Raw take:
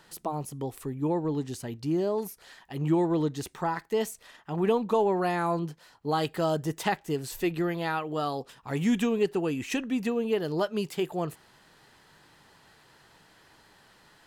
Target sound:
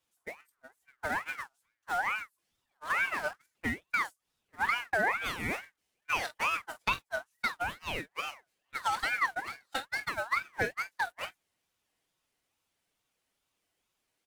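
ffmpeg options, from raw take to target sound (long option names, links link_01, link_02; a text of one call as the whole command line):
ffmpeg -i in.wav -filter_complex "[0:a]aeval=exprs='val(0)+0.5*0.0224*sgn(val(0))':channel_layout=same,equalizer=frequency=9500:width=1.6:gain=6,agate=range=-53dB:threshold=-24dB:ratio=16:detection=peak,equalizer=frequency=180:width=2:gain=-14,aecho=1:1:5:0.98,asplit=2[link_01][link_02];[link_02]aecho=0:1:22|45:0.355|0.2[link_03];[link_01][link_03]amix=inputs=2:normalize=0,acompressor=threshold=-38dB:ratio=3,aeval=exprs='val(0)*sin(2*PI*1500*n/s+1500*0.3/2.3*sin(2*PI*2.3*n/s))':channel_layout=same,volume=8.5dB" out.wav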